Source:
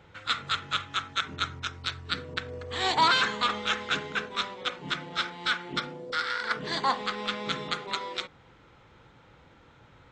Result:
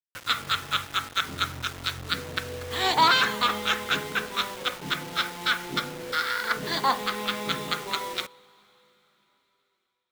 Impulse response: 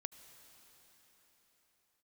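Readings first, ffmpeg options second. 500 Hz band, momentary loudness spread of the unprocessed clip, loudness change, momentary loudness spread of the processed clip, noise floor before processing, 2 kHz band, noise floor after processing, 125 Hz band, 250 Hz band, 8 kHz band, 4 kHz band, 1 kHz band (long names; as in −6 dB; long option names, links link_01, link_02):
+2.5 dB, 10 LU, +3.0 dB, 10 LU, −57 dBFS, +2.5 dB, −76 dBFS, +2.5 dB, +2.5 dB, +6.0 dB, +3.0 dB, +2.5 dB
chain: -filter_complex "[0:a]acrusher=bits=6:mix=0:aa=0.000001,asplit=2[link_01][link_02];[1:a]atrim=start_sample=2205[link_03];[link_02][link_03]afir=irnorm=-1:irlink=0,volume=-9.5dB[link_04];[link_01][link_04]amix=inputs=2:normalize=0,volume=1dB"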